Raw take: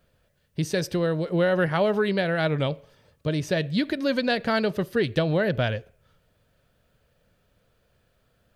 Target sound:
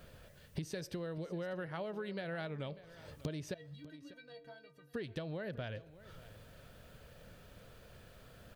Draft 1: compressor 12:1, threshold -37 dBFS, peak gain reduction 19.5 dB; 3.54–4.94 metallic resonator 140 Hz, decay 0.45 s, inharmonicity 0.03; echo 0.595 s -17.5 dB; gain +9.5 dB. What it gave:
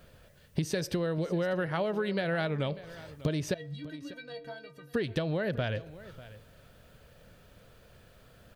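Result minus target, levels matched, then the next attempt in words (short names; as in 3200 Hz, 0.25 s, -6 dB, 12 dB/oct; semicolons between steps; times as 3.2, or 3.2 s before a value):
compressor: peak gain reduction -10.5 dB
compressor 12:1, threshold -48.5 dBFS, peak gain reduction 30 dB; 3.54–4.94 metallic resonator 140 Hz, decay 0.45 s, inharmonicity 0.03; echo 0.595 s -17.5 dB; gain +9.5 dB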